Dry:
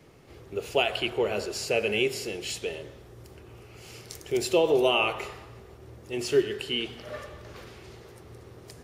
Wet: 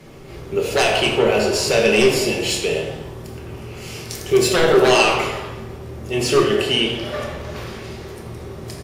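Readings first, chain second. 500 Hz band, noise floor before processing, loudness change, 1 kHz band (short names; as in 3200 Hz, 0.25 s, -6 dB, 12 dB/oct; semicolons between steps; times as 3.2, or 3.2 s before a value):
+10.0 dB, -50 dBFS, +9.5 dB, +11.0 dB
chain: sine folder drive 9 dB, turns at -10 dBFS; frequency-shifting echo 84 ms, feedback 58%, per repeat +110 Hz, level -16 dB; shoebox room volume 250 m³, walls mixed, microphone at 1.1 m; gain -3 dB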